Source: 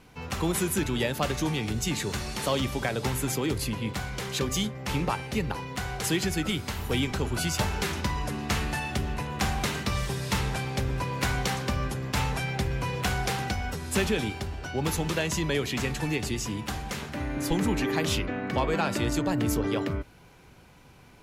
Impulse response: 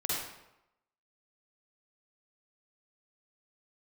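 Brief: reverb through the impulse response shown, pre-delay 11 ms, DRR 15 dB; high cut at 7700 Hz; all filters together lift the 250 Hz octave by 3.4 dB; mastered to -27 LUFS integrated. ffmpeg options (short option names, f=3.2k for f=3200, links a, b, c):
-filter_complex "[0:a]lowpass=7.7k,equalizer=f=250:t=o:g=4.5,asplit=2[a][b];[1:a]atrim=start_sample=2205,adelay=11[c];[b][c]afir=irnorm=-1:irlink=0,volume=-21dB[d];[a][d]amix=inputs=2:normalize=0,volume=1dB"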